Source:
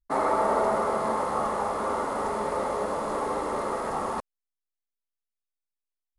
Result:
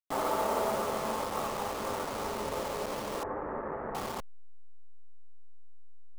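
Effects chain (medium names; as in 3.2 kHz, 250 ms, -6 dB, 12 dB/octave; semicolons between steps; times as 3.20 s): send-on-delta sampling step -27.5 dBFS; 3.23–3.95 s: elliptic low-pass 1.8 kHz, stop band 70 dB; trim -5.5 dB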